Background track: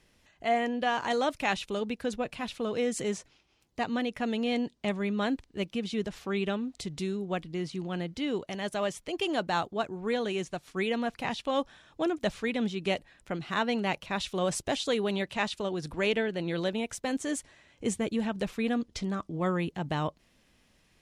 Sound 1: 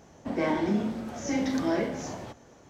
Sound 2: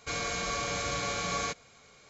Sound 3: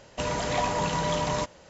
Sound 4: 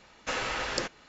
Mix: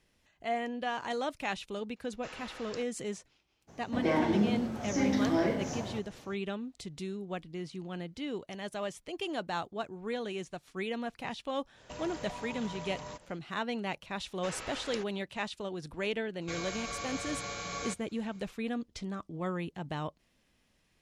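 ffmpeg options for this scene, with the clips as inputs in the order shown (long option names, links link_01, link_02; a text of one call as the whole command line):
ffmpeg -i bed.wav -i cue0.wav -i cue1.wav -i cue2.wav -i cue3.wav -filter_complex "[4:a]asplit=2[link_01][link_02];[0:a]volume=-6dB[link_03];[1:a]equalizer=frequency=110:width_type=o:width=0.77:gain=6[link_04];[3:a]acompressor=threshold=-32dB:ratio=4:attack=0.13:release=156:knee=1:detection=peak[link_05];[link_01]atrim=end=1.08,asetpts=PTS-STARTPTS,volume=-15.5dB,afade=type=in:duration=0.004:curve=hsin,afade=type=out:start_time=1.076:duration=0.004:curve=hsin,adelay=1960[link_06];[link_04]atrim=end=2.69,asetpts=PTS-STARTPTS,volume=-1.5dB,afade=type=in:duration=0.02,afade=type=out:start_time=2.67:duration=0.02,adelay=3670[link_07];[link_05]atrim=end=1.69,asetpts=PTS-STARTPTS,volume=-6.5dB,afade=type=in:duration=0.1,afade=type=out:start_time=1.59:duration=0.1,adelay=11720[link_08];[link_02]atrim=end=1.08,asetpts=PTS-STARTPTS,volume=-11dB,afade=type=in:duration=0.004:curve=hsin,afade=type=out:start_time=1.076:duration=0.004:curve=hsin,adelay=14160[link_09];[2:a]atrim=end=2.09,asetpts=PTS-STARTPTS,volume=-6.5dB,afade=type=in:duration=0.004:curve=hsin,afade=type=out:start_time=2.086:duration=0.004:curve=hsin,adelay=16410[link_10];[link_03][link_06][link_07][link_08][link_09][link_10]amix=inputs=6:normalize=0" out.wav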